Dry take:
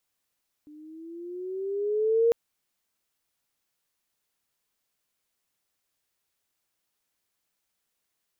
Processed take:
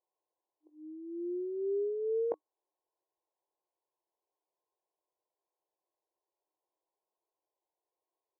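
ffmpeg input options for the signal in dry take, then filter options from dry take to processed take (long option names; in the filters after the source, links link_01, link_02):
-f lavfi -i "aevalsrc='pow(10,(-17+28.5*(t/1.65-1))/20)*sin(2*PI*296*1.65/(8*log(2)/12)*(exp(8*log(2)/12*t/1.65)-1))':duration=1.65:sample_rate=44100"
-filter_complex "[0:a]afftfilt=real='re*between(b*sr/4096,310,1100)':imag='im*between(b*sr/4096,310,1100)':win_size=4096:overlap=0.75,areverse,acompressor=threshold=-31dB:ratio=12,areverse,asplit=2[link_01][link_02];[link_02]adelay=20,volume=-11dB[link_03];[link_01][link_03]amix=inputs=2:normalize=0"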